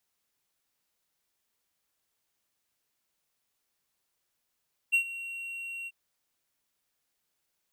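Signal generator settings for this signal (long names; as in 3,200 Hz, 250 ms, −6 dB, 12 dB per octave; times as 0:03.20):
note with an ADSR envelope triangle 2,740 Hz, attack 23 ms, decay 91 ms, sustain −16.5 dB, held 0.95 s, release 40 ms −17.5 dBFS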